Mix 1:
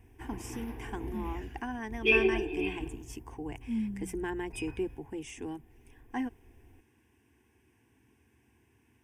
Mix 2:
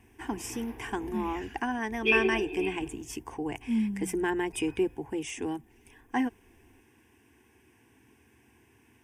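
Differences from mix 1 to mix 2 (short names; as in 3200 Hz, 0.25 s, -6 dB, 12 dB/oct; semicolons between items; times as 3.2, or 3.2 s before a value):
speech +7.5 dB; master: add low shelf 170 Hz -7 dB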